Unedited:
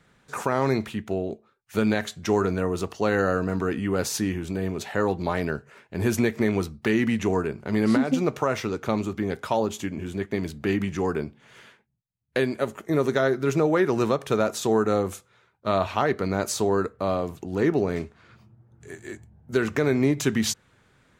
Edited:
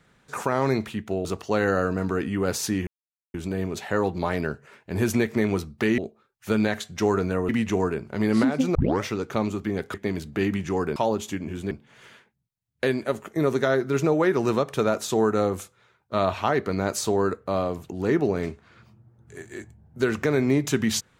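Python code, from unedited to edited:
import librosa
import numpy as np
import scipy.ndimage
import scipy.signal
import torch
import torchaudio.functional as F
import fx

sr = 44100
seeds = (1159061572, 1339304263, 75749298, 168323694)

y = fx.edit(x, sr, fx.move(start_s=1.25, length_s=1.51, to_s=7.02),
    fx.insert_silence(at_s=4.38, length_s=0.47),
    fx.tape_start(start_s=8.28, length_s=0.29),
    fx.move(start_s=9.47, length_s=0.75, to_s=11.24), tone=tone)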